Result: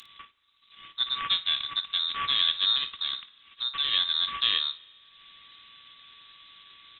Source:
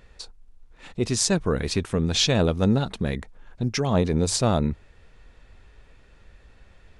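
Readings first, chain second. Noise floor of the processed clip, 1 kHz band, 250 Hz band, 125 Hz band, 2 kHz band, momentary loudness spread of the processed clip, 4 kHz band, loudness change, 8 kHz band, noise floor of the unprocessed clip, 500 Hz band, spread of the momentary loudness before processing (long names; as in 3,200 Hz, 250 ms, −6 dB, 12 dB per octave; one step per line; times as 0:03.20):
−63 dBFS, −4.0 dB, below −30 dB, below −30 dB, −1.0 dB, 8 LU, +6.5 dB, −2.0 dB, below −40 dB, −54 dBFS, below −30 dB, 17 LU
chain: samples sorted by size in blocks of 16 samples
high-pass filter 240 Hz 12 dB per octave
voice inversion scrambler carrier 3,900 Hz
parametric band 680 Hz −12.5 dB 1.3 octaves
upward compression, threshold −39 dBFS
high-shelf EQ 2,400 Hz +4 dB
ambience of single reflections 23 ms −16.5 dB, 55 ms −14.5 dB
spring reverb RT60 1.9 s, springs 35 ms, chirp 40 ms, DRR 19 dB
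level −3.5 dB
Opus 32 kbit/s 48,000 Hz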